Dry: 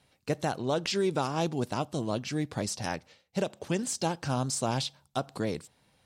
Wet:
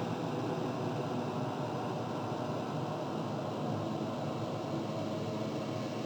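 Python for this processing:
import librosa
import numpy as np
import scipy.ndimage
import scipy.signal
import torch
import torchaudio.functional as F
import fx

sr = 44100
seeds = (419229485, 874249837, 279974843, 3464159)

y = fx.paulstretch(x, sr, seeds[0], factor=11.0, window_s=1.0, from_s=1.6)
y = np.interp(np.arange(len(y)), np.arange(len(y))[::4], y[::4])
y = F.gain(torch.from_numpy(y), -4.0).numpy()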